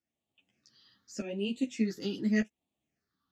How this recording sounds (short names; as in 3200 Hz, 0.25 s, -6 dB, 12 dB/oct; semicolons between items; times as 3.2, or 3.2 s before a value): phasing stages 6, 0.84 Hz, lowest notch 620–1500 Hz; tremolo saw up 0.83 Hz, depth 70%; a shimmering, thickened sound